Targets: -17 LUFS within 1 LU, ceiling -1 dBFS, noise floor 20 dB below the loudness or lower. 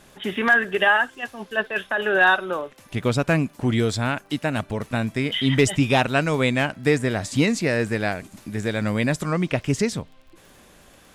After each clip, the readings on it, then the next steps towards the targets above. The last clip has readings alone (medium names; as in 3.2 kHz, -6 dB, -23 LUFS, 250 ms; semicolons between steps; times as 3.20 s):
tick rate 28 per s; loudness -22.0 LUFS; peak level -7.0 dBFS; loudness target -17.0 LUFS
-> de-click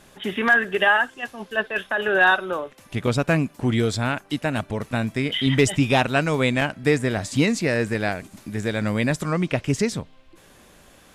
tick rate 0 per s; loudness -22.0 LUFS; peak level -7.0 dBFS; loudness target -17.0 LUFS
-> trim +5 dB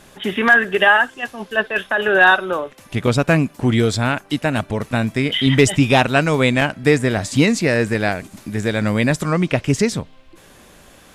loudness -17.0 LUFS; peak level -2.0 dBFS; noise floor -47 dBFS